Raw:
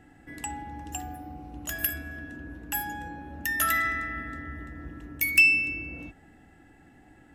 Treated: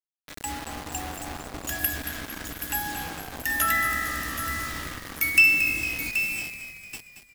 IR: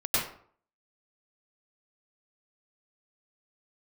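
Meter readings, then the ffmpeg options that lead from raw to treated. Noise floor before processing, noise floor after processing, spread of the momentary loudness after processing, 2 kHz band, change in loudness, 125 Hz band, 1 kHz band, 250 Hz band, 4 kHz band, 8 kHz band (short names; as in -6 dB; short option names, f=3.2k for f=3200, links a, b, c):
-56 dBFS, -55 dBFS, 17 LU, +2.5 dB, +1.0 dB, +2.0 dB, +3.0 dB, +1.0 dB, +5.5 dB, +4.5 dB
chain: -filter_complex "[0:a]asplit=2[a][b];[b]aecho=0:1:777|1554|2331:0.316|0.0632|0.0126[c];[a][c]amix=inputs=2:normalize=0,acrusher=bits=5:mix=0:aa=0.000001,asplit=2[d][e];[e]asplit=6[f][g][h][i][j][k];[f]adelay=227,afreqshift=-56,volume=-10dB[l];[g]adelay=454,afreqshift=-112,volume=-15.4dB[m];[h]adelay=681,afreqshift=-168,volume=-20.7dB[n];[i]adelay=908,afreqshift=-224,volume=-26.1dB[o];[j]adelay=1135,afreqshift=-280,volume=-31.4dB[p];[k]adelay=1362,afreqshift=-336,volume=-36.8dB[q];[l][m][n][o][p][q]amix=inputs=6:normalize=0[r];[d][r]amix=inputs=2:normalize=0,volume=1.5dB"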